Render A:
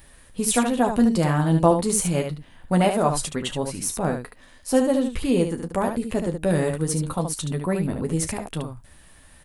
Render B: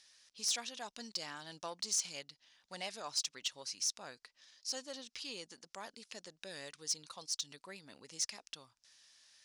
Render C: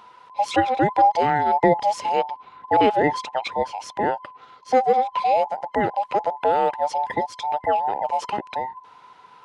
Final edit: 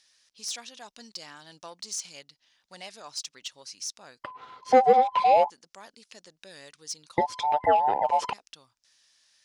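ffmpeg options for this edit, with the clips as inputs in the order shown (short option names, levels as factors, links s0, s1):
-filter_complex "[2:a]asplit=2[s0][s1];[1:a]asplit=3[s2][s3][s4];[s2]atrim=end=4.242[s5];[s0]atrim=start=4.238:end=5.502[s6];[s3]atrim=start=5.498:end=7.182[s7];[s1]atrim=start=7.178:end=8.332[s8];[s4]atrim=start=8.328[s9];[s5][s6]acrossfade=d=0.004:c1=hsin:c2=hsin[s10];[s10][s7]acrossfade=d=0.004:c1=hsin:c2=hsin[s11];[s11][s8]acrossfade=d=0.004:c1=hsin:c2=hsin[s12];[s12][s9]acrossfade=d=0.004:c1=hsin:c2=hsin"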